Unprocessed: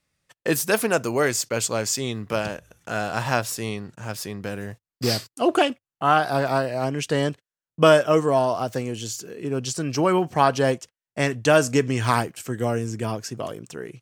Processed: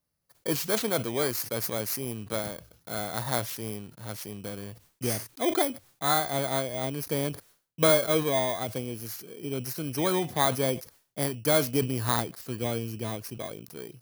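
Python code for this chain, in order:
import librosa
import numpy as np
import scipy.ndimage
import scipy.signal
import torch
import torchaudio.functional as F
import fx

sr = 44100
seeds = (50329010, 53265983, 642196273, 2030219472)

y = fx.bit_reversed(x, sr, seeds[0], block=16)
y = fx.sustainer(y, sr, db_per_s=140.0)
y = y * librosa.db_to_amplitude(-6.5)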